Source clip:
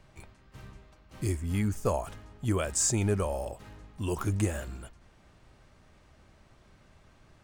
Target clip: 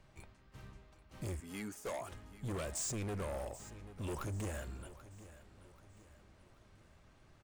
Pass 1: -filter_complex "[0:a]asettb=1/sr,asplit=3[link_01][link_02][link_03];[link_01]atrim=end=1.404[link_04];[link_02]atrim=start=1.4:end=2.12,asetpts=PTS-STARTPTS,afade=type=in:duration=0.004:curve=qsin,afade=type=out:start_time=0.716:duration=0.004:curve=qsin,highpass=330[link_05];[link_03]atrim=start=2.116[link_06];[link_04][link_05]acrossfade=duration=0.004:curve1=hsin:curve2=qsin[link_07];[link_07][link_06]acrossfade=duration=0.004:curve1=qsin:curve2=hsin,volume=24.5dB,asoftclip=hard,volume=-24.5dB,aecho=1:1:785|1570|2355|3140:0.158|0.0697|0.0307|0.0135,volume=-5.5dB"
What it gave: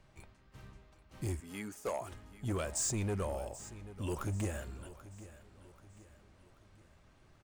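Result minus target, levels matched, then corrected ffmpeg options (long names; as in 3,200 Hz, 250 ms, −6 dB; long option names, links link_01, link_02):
gain into a clipping stage and back: distortion −7 dB
-filter_complex "[0:a]asettb=1/sr,asplit=3[link_01][link_02][link_03];[link_01]atrim=end=1.404[link_04];[link_02]atrim=start=1.4:end=2.12,asetpts=PTS-STARTPTS,afade=type=in:duration=0.004:curve=qsin,afade=type=out:start_time=0.716:duration=0.004:curve=qsin,highpass=330[link_05];[link_03]atrim=start=2.116[link_06];[link_04][link_05]acrossfade=duration=0.004:curve1=hsin:curve2=qsin[link_07];[link_07][link_06]acrossfade=duration=0.004:curve1=qsin:curve2=hsin,volume=31.5dB,asoftclip=hard,volume=-31.5dB,aecho=1:1:785|1570|2355|3140:0.158|0.0697|0.0307|0.0135,volume=-5.5dB"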